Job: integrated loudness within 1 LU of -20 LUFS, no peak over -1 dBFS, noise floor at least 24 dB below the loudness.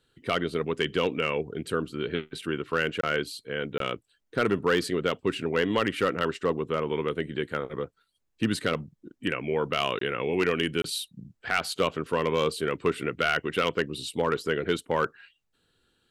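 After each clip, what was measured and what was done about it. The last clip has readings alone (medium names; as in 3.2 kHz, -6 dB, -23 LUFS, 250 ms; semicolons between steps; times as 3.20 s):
clipped samples 0.3%; clipping level -15.5 dBFS; dropouts 4; longest dropout 23 ms; loudness -28.5 LUFS; peak level -15.5 dBFS; loudness target -20.0 LUFS
-> clip repair -15.5 dBFS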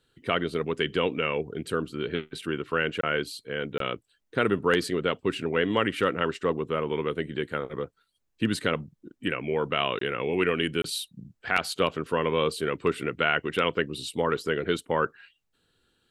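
clipped samples 0.0%; dropouts 4; longest dropout 23 ms
-> interpolate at 3.01/3.78/9.99/10.82 s, 23 ms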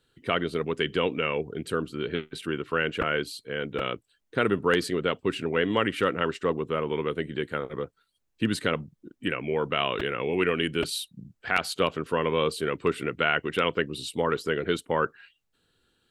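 dropouts 0; loudness -28.0 LUFS; peak level -6.5 dBFS; loudness target -20.0 LUFS
-> trim +8 dB; peak limiter -1 dBFS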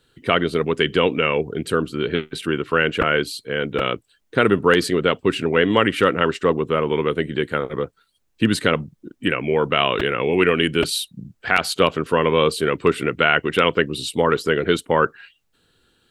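loudness -20.0 LUFS; peak level -1.0 dBFS; noise floor -67 dBFS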